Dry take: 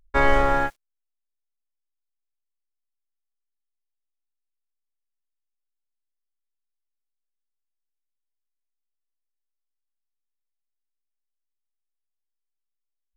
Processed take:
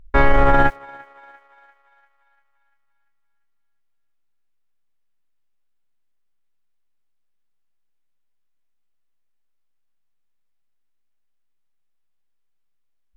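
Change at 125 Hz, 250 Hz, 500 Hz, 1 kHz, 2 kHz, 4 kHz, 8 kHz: +8.5 dB, +6.0 dB, +4.0 dB, +4.5 dB, +3.5 dB, +1.0 dB, no reading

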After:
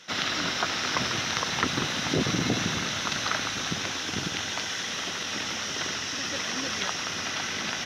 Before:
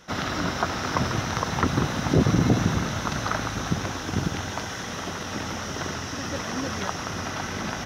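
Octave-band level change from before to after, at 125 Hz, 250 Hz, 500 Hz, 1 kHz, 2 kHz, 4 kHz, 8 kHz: -10.0 dB, -6.5 dB, -5.0 dB, -3.5 dB, +2.0 dB, +6.5 dB, +3.5 dB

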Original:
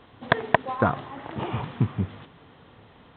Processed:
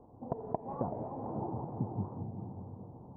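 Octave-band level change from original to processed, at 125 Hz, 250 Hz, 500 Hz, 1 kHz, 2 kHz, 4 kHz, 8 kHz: -10.0 dB, -8.0 dB, -10.5 dB, -13.0 dB, under -40 dB, under -40 dB, no reading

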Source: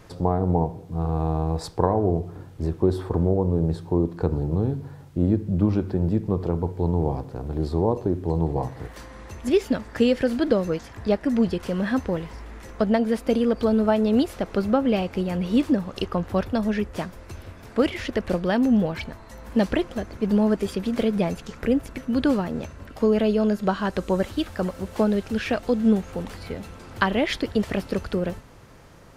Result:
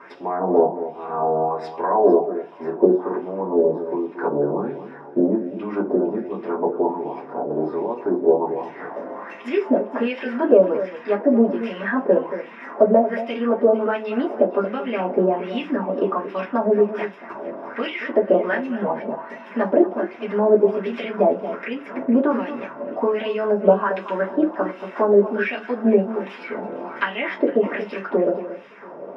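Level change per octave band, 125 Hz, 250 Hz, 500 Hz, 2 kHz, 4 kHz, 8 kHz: under -10 dB, -0.5 dB, +6.5 dB, +4.5 dB, -4.5 dB, no reading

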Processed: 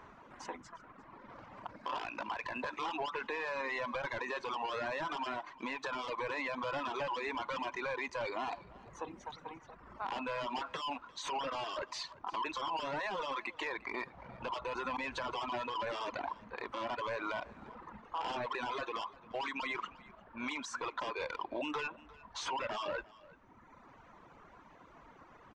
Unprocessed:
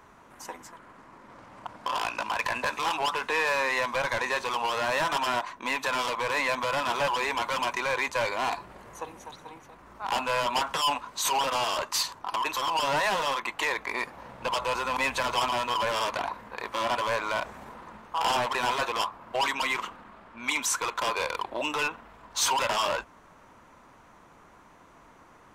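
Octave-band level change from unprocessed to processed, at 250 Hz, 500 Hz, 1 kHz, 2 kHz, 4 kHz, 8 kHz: -4.5 dB, -8.5 dB, -10.5 dB, -11.0 dB, -13.5 dB, -19.5 dB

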